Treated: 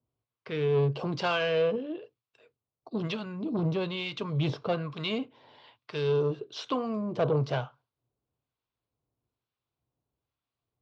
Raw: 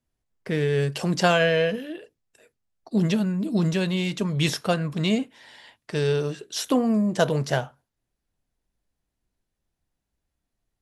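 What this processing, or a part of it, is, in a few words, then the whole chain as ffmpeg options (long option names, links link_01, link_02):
guitar amplifier with harmonic tremolo: -filter_complex "[0:a]acrossover=split=960[link_01][link_02];[link_01]aeval=exprs='val(0)*(1-0.7/2+0.7/2*cos(2*PI*1.1*n/s))':channel_layout=same[link_03];[link_02]aeval=exprs='val(0)*(1-0.7/2-0.7/2*cos(2*PI*1.1*n/s))':channel_layout=same[link_04];[link_03][link_04]amix=inputs=2:normalize=0,asoftclip=type=tanh:threshold=-21dB,highpass=93,equalizer=frequency=120:width_type=q:width=4:gain=9,equalizer=frequency=190:width_type=q:width=4:gain=-8,equalizer=frequency=450:width_type=q:width=4:gain=4,equalizer=frequency=1100:width_type=q:width=4:gain=6,equalizer=frequency=1800:width_type=q:width=4:gain=-10,lowpass=frequency=4200:width=0.5412,lowpass=frequency=4200:width=1.3066"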